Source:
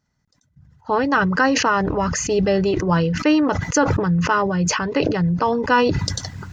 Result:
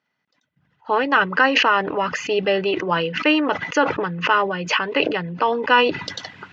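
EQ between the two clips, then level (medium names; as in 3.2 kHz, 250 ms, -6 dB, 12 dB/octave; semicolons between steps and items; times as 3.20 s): high-pass 320 Hz 12 dB/octave; resonant low-pass 2.9 kHz, resonance Q 2.7; 0.0 dB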